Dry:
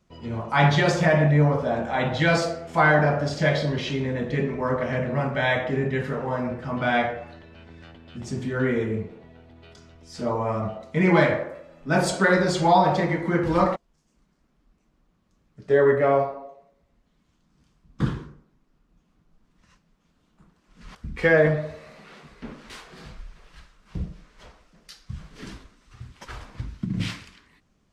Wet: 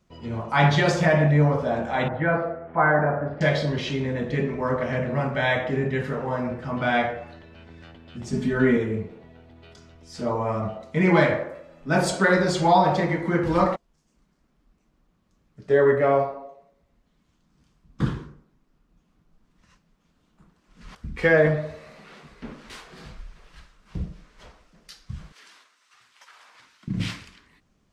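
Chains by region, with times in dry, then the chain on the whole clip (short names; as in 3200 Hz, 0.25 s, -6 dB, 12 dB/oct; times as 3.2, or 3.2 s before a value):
2.08–3.41 LPF 1700 Hz 24 dB/oct + low shelf 320 Hz -4.5 dB
8.33–8.77 low shelf 140 Hz +8.5 dB + comb 4.7 ms, depth 87%
25.32–26.88 HPF 1000 Hz + compressor, threshold -47 dBFS
whole clip: dry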